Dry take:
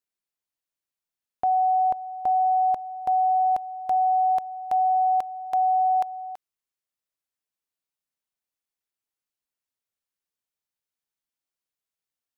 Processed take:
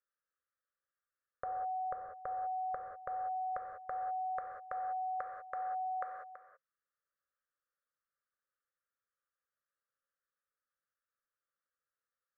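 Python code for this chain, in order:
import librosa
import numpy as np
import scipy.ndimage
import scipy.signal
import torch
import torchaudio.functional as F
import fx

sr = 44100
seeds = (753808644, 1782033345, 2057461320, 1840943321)

y = fx.curve_eq(x, sr, hz=(110.0, 300.0, 530.0, 830.0, 1200.0, 1800.0, 2700.0, 4200.0), db=(0, -15, 11, -22, 14, 9, -21, -25))
y = fx.rev_gated(y, sr, seeds[0], gate_ms=220, shape='flat', drr_db=1.5)
y = y * 10.0 ** (-7.0 / 20.0)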